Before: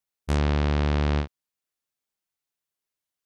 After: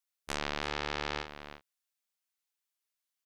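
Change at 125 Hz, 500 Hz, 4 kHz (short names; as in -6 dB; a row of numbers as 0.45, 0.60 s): -22.5, -9.0, -0.5 dB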